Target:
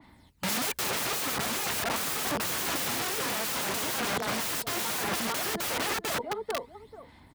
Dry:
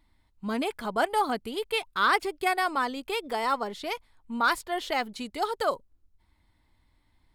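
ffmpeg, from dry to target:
-filter_complex "[0:a]afreqshift=-14,agate=range=-7dB:threshold=-56dB:ratio=16:detection=peak,aphaser=in_gain=1:out_gain=1:delay=4.8:decay=0.54:speed=0.28:type=sinusoidal,asplit=2[a][b];[b]adelay=439,lowpass=f=1.4k:p=1,volume=-9.5dB,asplit=2[c][d];[d]adelay=439,lowpass=f=1.4k:p=1,volume=0.19,asplit=2[e][f];[f]adelay=439,lowpass=f=1.4k:p=1,volume=0.19[g];[c][e][g]amix=inputs=3:normalize=0[h];[a][h]amix=inputs=2:normalize=0,aeval=exprs='0.0944*sin(PI/2*2.82*val(0)/0.0944)':c=same,asplit=3[i][j][k];[i]afade=t=out:st=1.69:d=0.02[l];[j]asubboost=boost=2.5:cutoff=150,afade=t=in:st=1.69:d=0.02,afade=t=out:st=2.95:d=0.02[m];[k]afade=t=in:st=2.95:d=0.02[n];[l][m][n]amix=inputs=3:normalize=0,aeval=exprs='(mod(28.2*val(0)+1,2)-1)/28.2':c=same,highpass=95,adynamicequalizer=threshold=0.00447:dfrequency=2300:dqfactor=0.7:tfrequency=2300:tqfactor=0.7:attack=5:release=100:ratio=0.375:range=2:mode=cutabove:tftype=highshelf,volume=6dB"

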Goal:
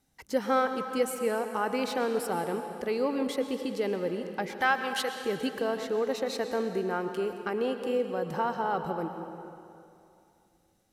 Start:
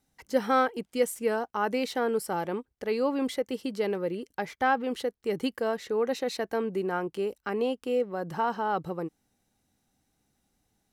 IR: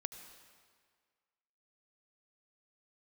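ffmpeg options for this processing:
-filter_complex "[0:a]asettb=1/sr,asplit=3[a][b][c];[a]atrim=end=4.614[d];[b]atrim=start=4.61:end=5.12,asetpts=PTS-STARTPTS,afade=t=in:d=0.004:c=qsin,afade=t=out:st=0.506:d=0.004:c=qsin,tiltshelf=f=750:g=-9.5[e];[c]atrim=start=5.116[f];[d][e]acrossfade=d=0.004:c1=hsin:c2=qsin[g];[g][f]acrossfade=d=0.004:c1=qsin:c2=hsin,asplit=2[h][i];[i]acompressor=threshold=-33dB:ratio=6,volume=0dB[j];[h][j]amix=inputs=2:normalize=0[k];[1:a]atrim=start_sample=2205,asetrate=29547,aresample=44100[l];[k][l]afir=irnorm=-1:irlink=0,volume=-4dB"

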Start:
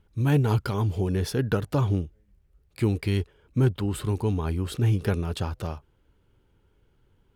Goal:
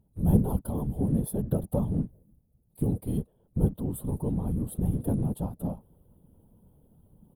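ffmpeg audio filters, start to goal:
-af "firequalizer=gain_entry='entry(120,0);entry(170,15);entry(250,-7);entry(510,3);entry(730,3);entry(1400,-19);entry(2200,-26);entry(3400,-13);entry(5600,-25);entry(9900,10)':delay=0.05:min_phase=1,areverse,acompressor=mode=upward:threshold=-41dB:ratio=2.5,areverse,afftfilt=real='hypot(re,im)*cos(2*PI*random(0))':imag='hypot(re,im)*sin(2*PI*random(1))':win_size=512:overlap=0.75"

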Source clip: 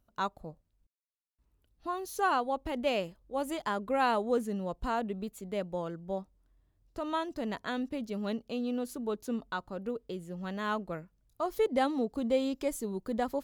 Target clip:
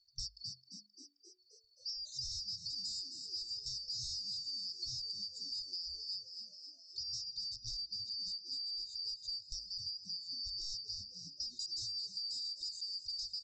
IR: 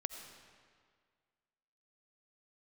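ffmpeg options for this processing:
-filter_complex "[0:a]afftfilt=real='real(if(lt(b,272),68*(eq(floor(b/68),0)*1+eq(floor(b/68),1)*2+eq(floor(b/68),2)*3+eq(floor(b/68),3)*0)+mod(b,68),b),0)':imag='imag(if(lt(b,272),68*(eq(floor(b/68),0)*1+eq(floor(b/68),1)*2+eq(floor(b/68),2)*3+eq(floor(b/68),3)*0)+mod(b,68),b),0)':win_size=2048:overlap=0.75,equalizer=f=5.6k:t=o:w=0.94:g=-7,aresample=16000,aeval=exprs='0.0251*(abs(mod(val(0)/0.0251+3,4)-2)-1)':c=same,aresample=44100,afftfilt=real='re*(1-between(b*sr/4096,130,3600))':imag='im*(1-between(b*sr/4096,130,3600))':win_size=4096:overlap=0.75,bandreject=f=50:t=h:w=6,bandreject=f=100:t=h:w=6,bandreject=f=150:t=h:w=6,bandreject=f=200:t=h:w=6,bandreject=f=250:t=h:w=6,bandreject=f=300:t=h:w=6,bandreject=f=350:t=h:w=6,bandreject=f=400:t=h:w=6,bandreject=f=450:t=h:w=6,asplit=8[a][b][c][d][e][f][g][h];[b]adelay=264,afreqshift=79,volume=-13dB[i];[c]adelay=528,afreqshift=158,volume=-17dB[j];[d]adelay=792,afreqshift=237,volume=-21dB[k];[e]adelay=1056,afreqshift=316,volume=-25dB[l];[f]adelay=1320,afreqshift=395,volume=-29.1dB[m];[g]adelay=1584,afreqshift=474,volume=-33.1dB[n];[h]adelay=1848,afreqshift=553,volume=-37.1dB[o];[a][i][j][k][l][m][n][o]amix=inputs=8:normalize=0,acompressor=threshold=-43dB:ratio=6,volume=4dB"

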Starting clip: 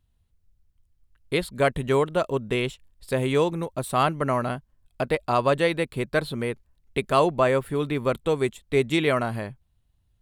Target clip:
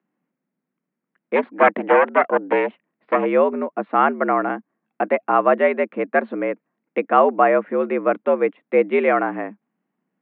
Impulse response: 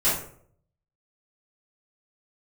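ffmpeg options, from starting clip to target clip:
-filter_complex "[0:a]asplit=3[a][b][c];[a]afade=t=out:st=1.35:d=0.02[d];[b]aeval=exprs='0.376*(cos(1*acos(clip(val(0)/0.376,-1,1)))-cos(1*PI/2))+0.133*(cos(6*acos(clip(val(0)/0.376,-1,1)))-cos(6*PI/2))':c=same,afade=t=in:st=1.35:d=0.02,afade=t=out:st=3.24:d=0.02[e];[c]afade=t=in:st=3.24:d=0.02[f];[d][e][f]amix=inputs=3:normalize=0,highpass=f=150:t=q:w=0.5412,highpass=f=150:t=q:w=1.307,lowpass=f=2.2k:t=q:w=0.5176,lowpass=f=2.2k:t=q:w=0.7071,lowpass=f=2.2k:t=q:w=1.932,afreqshift=76,volume=5.5dB"

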